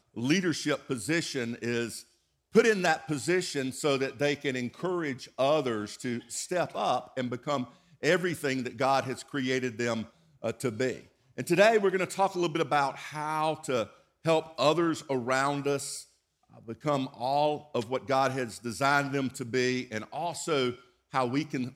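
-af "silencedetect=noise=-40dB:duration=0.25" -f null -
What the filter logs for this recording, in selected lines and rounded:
silence_start: 2.01
silence_end: 2.55 | silence_duration: 0.54
silence_start: 7.65
silence_end: 8.03 | silence_duration: 0.38
silence_start: 10.05
silence_end: 10.44 | silence_duration: 0.39
silence_start: 11.00
silence_end: 11.38 | silence_duration: 0.39
silence_start: 13.87
silence_end: 14.25 | silence_duration: 0.38
silence_start: 16.02
silence_end: 16.59 | silence_duration: 0.57
silence_start: 20.75
silence_end: 21.14 | silence_duration: 0.38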